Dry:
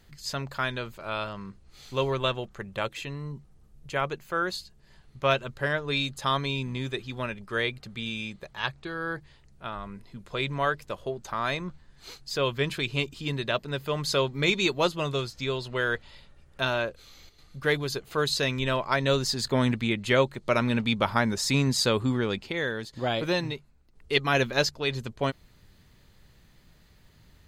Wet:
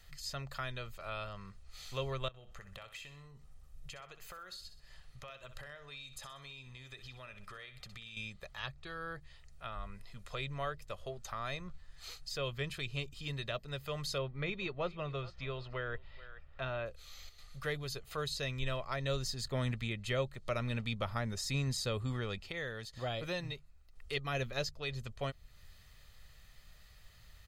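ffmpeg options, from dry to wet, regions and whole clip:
ffmpeg -i in.wav -filter_complex "[0:a]asettb=1/sr,asplit=3[link_01][link_02][link_03];[link_01]atrim=end=2.284[link_04];[link_02]atrim=start=2.28:end=8.17,asetpts=PTS-STARTPTS,afade=type=in:duration=0.004:curve=qsin,afade=type=out:start_time=5.886:duration=0.004:curve=qsin,acompressor=threshold=-41dB:ratio=16:attack=3.2:release=140:knee=1:detection=peak,aecho=1:1:63|126|189|252:0.251|0.1|0.0402|0.0161,atrim=end_sample=259749[link_05];[link_03]atrim=start=8.166[link_06];[link_04][link_05]acrossfade=duration=0.004:curve1=hsin:curve2=qsin[link_07];[link_07][link_06]acrossfade=duration=0.004:curve1=qsin:curve2=hsin,asettb=1/sr,asplit=3[link_08][link_09][link_10];[link_08]atrim=end=14.184[link_11];[link_09]atrim=start=14.18:end=16.86,asetpts=PTS-STARTPTS,afade=type=in:duration=0.004:curve=qsin,afade=type=out:start_time=2.676:duration=0.004:curve=qsin,lowpass=2300,aecho=1:1:429:0.075,atrim=end_sample=118188[link_12];[link_10]atrim=start=16.856[link_13];[link_11][link_12]acrossfade=duration=0.004:curve1=hsin:curve2=qsin[link_14];[link_14][link_13]acrossfade=duration=0.004:curve1=qsin:curve2=hsin,equalizer=frequency=240:width_type=o:width=2.8:gain=-13.5,aecho=1:1:1.6:0.38,acrossover=split=450[link_15][link_16];[link_16]acompressor=threshold=-49dB:ratio=2[link_17];[link_15][link_17]amix=inputs=2:normalize=0,volume=1dB" out.wav

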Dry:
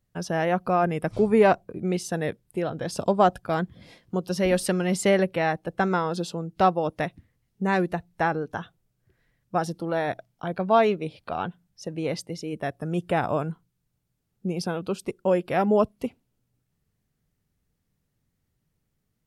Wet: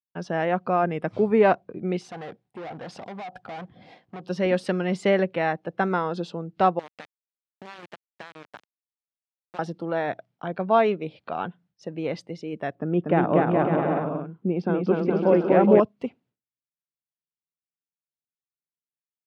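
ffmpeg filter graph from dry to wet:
ffmpeg -i in.wav -filter_complex "[0:a]asettb=1/sr,asplit=3[link_01][link_02][link_03];[link_01]atrim=end=2.014[link_04];[link_02]atrim=start=2.01:end=4.22,asetpts=PTS-STARTPTS,afade=type=in:duration=0.004:curve=qsin,afade=type=out:start_time=2.206:duration=0.004:curve=qsin,equalizer=frequency=760:width=5.1:gain=14.5,acompressor=threshold=-24dB:ratio=6:attack=3.2:release=140:knee=1:detection=peak,volume=34dB,asoftclip=hard,volume=-34dB[link_05];[link_03]atrim=start=4.216[link_06];[link_04][link_05]acrossfade=duration=0.004:curve1=hsin:curve2=qsin[link_07];[link_07][link_06]acrossfade=duration=0.004:curve1=qsin:curve2=hsin,asettb=1/sr,asplit=3[link_08][link_09][link_10];[link_08]atrim=end=6.794[link_11];[link_09]atrim=start=6.79:end=9.59,asetpts=PTS-STARTPTS,afade=type=in:duration=0.004:curve=qsin,afade=type=out:start_time=2.796:duration=0.004:curve=qsin,tiltshelf=frequency=1100:gain=-6,acompressor=threshold=-35dB:ratio=8:attack=3.2:release=140:knee=1:detection=peak,aeval=exprs='val(0)*gte(abs(val(0)),0.0188)':channel_layout=same[link_12];[link_10]atrim=start=9.586[link_13];[link_11][link_12]acrossfade=duration=0.004:curve1=hsin:curve2=qsin[link_14];[link_14][link_13]acrossfade=duration=0.004:curve1=qsin:curve2=hsin,asettb=1/sr,asplit=3[link_15][link_16][link_17];[link_15]atrim=end=12.754[link_18];[link_16]atrim=start=12.75:end=15.8,asetpts=PTS-STARTPTS,afade=type=in:duration=0.004:curve=qsin,afade=type=out:start_time=3.046:duration=0.004:curve=qsin,lowpass=2700,equalizer=frequency=290:width_type=o:width=1.4:gain=7,aecho=1:1:240|420|555|656.2|732.2|789.1|831.9:0.794|0.631|0.501|0.398|0.316|0.251|0.2,atrim=end_sample=134505[link_19];[link_17]atrim=start=15.796[link_20];[link_18][link_19]acrossfade=duration=0.004:curve1=hsin:curve2=qsin[link_21];[link_21][link_20]acrossfade=duration=0.004:curve1=qsin:curve2=hsin,lowpass=3400,agate=range=-33dB:threshold=-54dB:ratio=3:detection=peak,highpass=150" out.wav

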